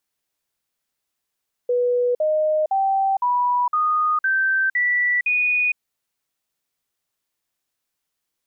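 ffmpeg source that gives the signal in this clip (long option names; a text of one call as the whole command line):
ffmpeg -f lavfi -i "aevalsrc='0.15*clip(min(mod(t,0.51),0.46-mod(t,0.51))/0.005,0,1)*sin(2*PI*490*pow(2,floor(t/0.51)/3)*mod(t,0.51))':duration=4.08:sample_rate=44100" out.wav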